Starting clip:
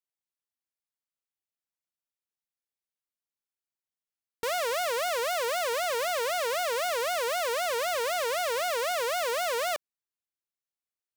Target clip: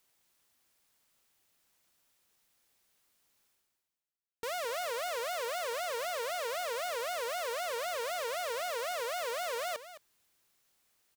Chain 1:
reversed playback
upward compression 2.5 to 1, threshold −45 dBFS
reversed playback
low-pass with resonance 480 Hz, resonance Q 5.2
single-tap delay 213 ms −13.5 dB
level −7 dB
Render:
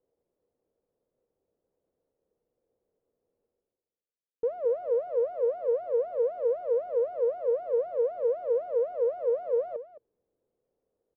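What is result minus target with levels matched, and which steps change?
500 Hz band +4.5 dB
remove: low-pass with resonance 480 Hz, resonance Q 5.2

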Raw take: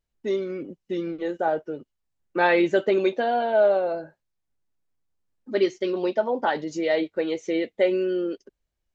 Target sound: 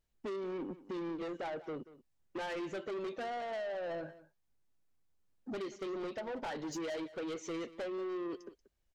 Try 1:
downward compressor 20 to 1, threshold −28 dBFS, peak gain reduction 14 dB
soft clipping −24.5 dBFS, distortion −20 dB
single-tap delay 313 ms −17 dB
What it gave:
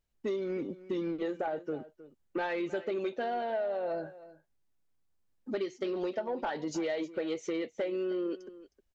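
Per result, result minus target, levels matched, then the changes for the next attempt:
echo 129 ms late; soft clipping: distortion −12 dB
change: single-tap delay 184 ms −17 dB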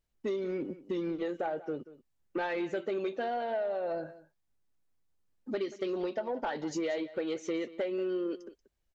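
soft clipping: distortion −12 dB
change: soft clipping −36.5 dBFS, distortion −8 dB

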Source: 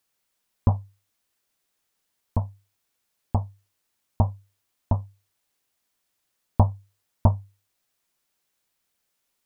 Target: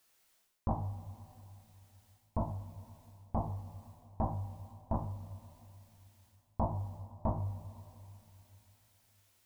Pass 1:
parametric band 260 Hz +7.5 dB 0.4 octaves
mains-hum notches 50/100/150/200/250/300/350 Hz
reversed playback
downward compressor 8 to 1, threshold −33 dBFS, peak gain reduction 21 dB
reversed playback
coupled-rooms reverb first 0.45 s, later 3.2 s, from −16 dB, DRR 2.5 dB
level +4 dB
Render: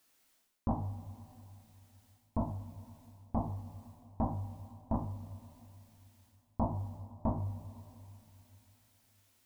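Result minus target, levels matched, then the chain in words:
250 Hz band +3.0 dB
parametric band 260 Hz −2 dB 0.4 octaves
mains-hum notches 50/100/150/200/250/300/350 Hz
reversed playback
downward compressor 8 to 1, threshold −33 dBFS, peak gain reduction 20 dB
reversed playback
coupled-rooms reverb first 0.45 s, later 3.2 s, from −16 dB, DRR 2.5 dB
level +4 dB

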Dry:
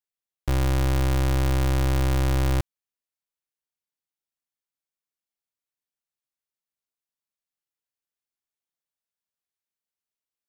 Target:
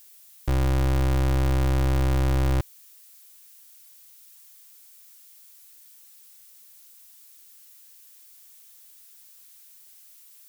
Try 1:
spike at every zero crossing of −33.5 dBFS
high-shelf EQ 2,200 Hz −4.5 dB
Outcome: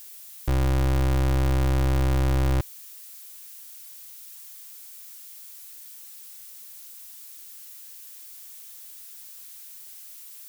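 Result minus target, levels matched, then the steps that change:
spike at every zero crossing: distortion +7 dB
change: spike at every zero crossing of −41 dBFS

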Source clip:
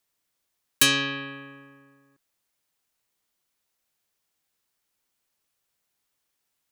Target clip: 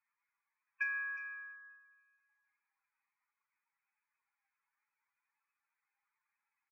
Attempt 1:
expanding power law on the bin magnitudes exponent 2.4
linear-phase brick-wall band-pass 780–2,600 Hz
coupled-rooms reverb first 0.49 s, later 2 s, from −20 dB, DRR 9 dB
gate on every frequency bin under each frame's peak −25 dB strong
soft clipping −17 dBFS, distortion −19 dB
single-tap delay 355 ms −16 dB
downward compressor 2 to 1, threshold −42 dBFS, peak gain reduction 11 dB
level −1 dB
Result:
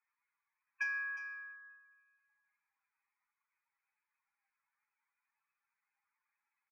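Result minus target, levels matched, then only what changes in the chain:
soft clipping: distortion +14 dB
change: soft clipping −8.5 dBFS, distortion −34 dB

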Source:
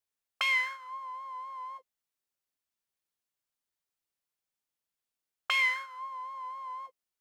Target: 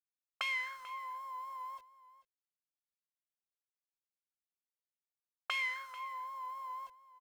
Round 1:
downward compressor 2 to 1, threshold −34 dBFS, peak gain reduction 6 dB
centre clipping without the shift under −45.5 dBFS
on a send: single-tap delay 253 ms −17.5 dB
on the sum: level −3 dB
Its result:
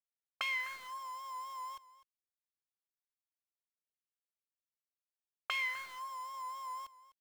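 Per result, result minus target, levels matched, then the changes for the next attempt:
echo 187 ms early; centre clipping without the shift: distortion +13 dB
change: single-tap delay 440 ms −17.5 dB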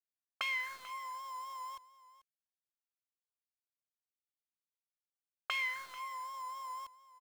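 centre clipping without the shift: distortion +13 dB
change: centre clipping without the shift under −54 dBFS

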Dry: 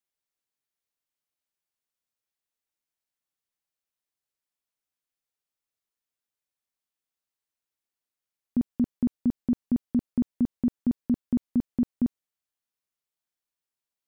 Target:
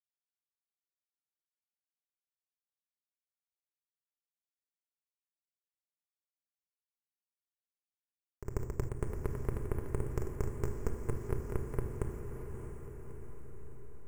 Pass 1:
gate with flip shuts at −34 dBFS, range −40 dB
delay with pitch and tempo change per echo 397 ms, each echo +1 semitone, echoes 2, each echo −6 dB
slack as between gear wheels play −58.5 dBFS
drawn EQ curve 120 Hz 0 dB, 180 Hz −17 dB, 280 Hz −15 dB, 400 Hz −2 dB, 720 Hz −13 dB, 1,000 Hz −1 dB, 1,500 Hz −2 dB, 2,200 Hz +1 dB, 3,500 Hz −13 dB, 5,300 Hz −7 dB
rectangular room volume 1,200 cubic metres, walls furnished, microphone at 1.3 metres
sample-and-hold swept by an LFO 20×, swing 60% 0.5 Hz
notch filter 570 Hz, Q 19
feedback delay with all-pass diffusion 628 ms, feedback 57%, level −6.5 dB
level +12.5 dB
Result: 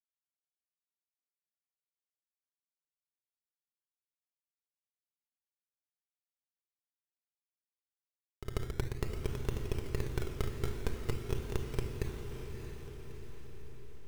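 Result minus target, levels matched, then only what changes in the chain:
sample-and-hold swept by an LFO: distortion +12 dB
change: sample-and-hold swept by an LFO 5×, swing 60% 0.5 Hz

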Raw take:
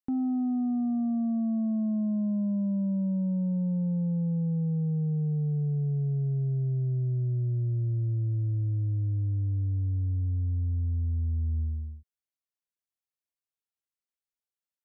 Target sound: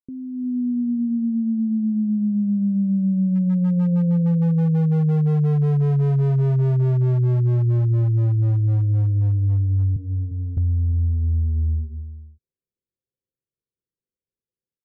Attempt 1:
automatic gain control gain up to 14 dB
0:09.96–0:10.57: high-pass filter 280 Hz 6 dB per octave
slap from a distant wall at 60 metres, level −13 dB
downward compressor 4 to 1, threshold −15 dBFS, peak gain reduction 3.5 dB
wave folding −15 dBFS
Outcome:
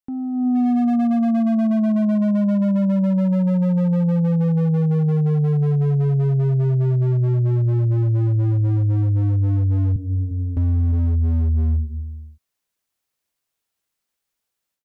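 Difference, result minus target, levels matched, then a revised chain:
500 Hz band +3.0 dB
automatic gain control gain up to 14 dB
0:09.96–0:10.57: high-pass filter 280 Hz 6 dB per octave
slap from a distant wall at 60 metres, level −13 dB
downward compressor 4 to 1, threshold −15 dBFS, peak gain reduction 3.5 dB
Chebyshev low-pass with heavy ripple 540 Hz, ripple 6 dB
wave folding −15 dBFS

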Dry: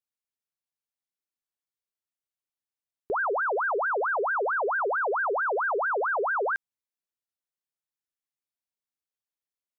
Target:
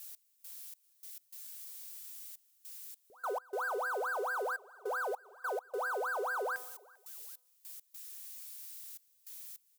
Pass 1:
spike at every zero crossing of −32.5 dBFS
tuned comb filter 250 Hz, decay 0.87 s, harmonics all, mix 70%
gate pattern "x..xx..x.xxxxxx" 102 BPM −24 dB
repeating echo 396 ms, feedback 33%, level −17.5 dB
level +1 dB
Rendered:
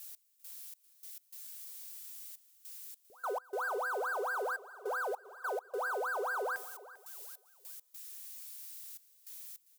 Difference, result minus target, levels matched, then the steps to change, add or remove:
echo-to-direct +7.5 dB
change: repeating echo 396 ms, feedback 33%, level −25 dB

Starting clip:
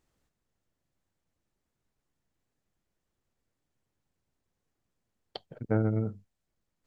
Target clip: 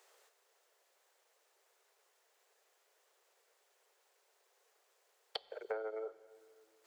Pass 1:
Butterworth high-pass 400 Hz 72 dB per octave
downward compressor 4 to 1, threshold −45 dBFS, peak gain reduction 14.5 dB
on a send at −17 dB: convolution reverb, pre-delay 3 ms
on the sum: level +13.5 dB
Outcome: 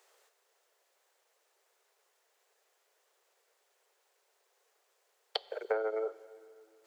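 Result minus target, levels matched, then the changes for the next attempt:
downward compressor: peak gain reduction −8 dB
change: downward compressor 4 to 1, threshold −55.5 dBFS, peak gain reduction 22.5 dB

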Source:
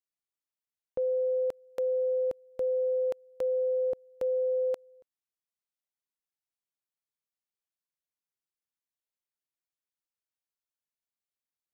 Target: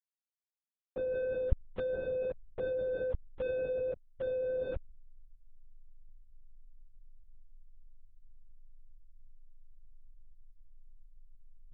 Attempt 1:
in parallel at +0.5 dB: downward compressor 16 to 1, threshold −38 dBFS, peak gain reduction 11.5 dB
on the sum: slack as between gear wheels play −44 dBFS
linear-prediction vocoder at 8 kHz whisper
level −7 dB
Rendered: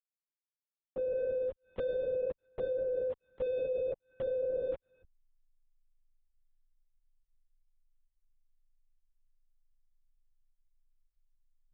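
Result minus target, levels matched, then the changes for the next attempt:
slack as between gear wheels: distortion −14 dB
change: slack as between gear wheels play −32.5 dBFS

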